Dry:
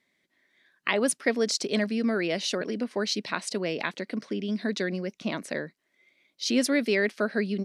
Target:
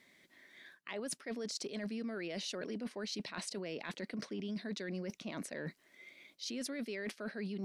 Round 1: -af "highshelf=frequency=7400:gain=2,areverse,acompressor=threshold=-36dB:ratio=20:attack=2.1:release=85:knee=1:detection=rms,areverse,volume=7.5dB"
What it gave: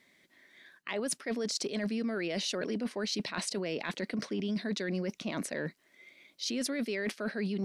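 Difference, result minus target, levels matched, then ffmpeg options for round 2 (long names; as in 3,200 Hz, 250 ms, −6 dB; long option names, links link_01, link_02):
downward compressor: peak gain reduction −7 dB
-af "highshelf=frequency=7400:gain=2,areverse,acompressor=threshold=-43.5dB:ratio=20:attack=2.1:release=85:knee=1:detection=rms,areverse,volume=7.5dB"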